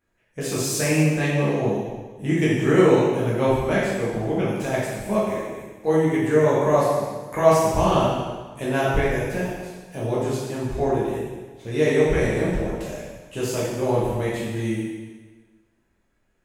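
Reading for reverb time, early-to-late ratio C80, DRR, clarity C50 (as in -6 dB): 1.4 s, 1.5 dB, -8.0 dB, -1.0 dB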